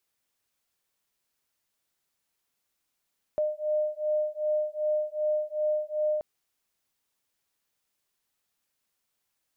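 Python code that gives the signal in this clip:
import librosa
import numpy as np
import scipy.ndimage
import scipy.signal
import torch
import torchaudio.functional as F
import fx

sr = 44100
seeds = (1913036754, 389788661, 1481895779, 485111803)

y = fx.two_tone_beats(sr, length_s=2.83, hz=607.0, beat_hz=2.6, level_db=-28.5)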